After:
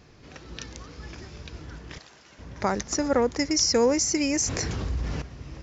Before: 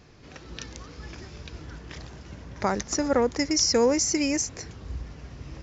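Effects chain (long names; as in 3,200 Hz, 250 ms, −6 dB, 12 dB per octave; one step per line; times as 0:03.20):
0:01.98–0:02.39: high-pass filter 1,100 Hz 6 dB per octave
0:04.33–0:05.22: envelope flattener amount 70%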